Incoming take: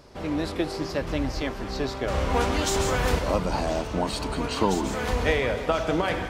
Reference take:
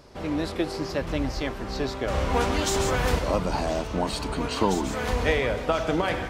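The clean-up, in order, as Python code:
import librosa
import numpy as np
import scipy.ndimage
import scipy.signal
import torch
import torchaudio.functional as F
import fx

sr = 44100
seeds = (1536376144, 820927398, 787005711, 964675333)

y = fx.fix_echo_inverse(x, sr, delay_ms=216, level_db=-15.5)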